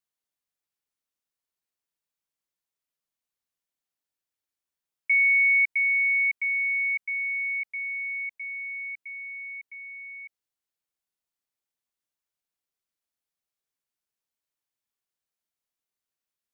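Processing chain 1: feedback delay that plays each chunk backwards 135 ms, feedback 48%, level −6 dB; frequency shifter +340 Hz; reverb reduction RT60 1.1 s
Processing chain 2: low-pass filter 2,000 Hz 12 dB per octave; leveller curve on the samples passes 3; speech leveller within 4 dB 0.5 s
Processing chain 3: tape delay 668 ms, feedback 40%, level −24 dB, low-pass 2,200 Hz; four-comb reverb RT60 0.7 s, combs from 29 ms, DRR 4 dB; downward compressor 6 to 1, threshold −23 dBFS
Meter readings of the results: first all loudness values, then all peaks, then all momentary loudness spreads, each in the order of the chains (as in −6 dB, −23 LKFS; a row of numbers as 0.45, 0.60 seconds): −25.0, −24.5, −25.5 LKFS; −14.5, −22.5, −17.0 dBFS; 21, 4, 15 LU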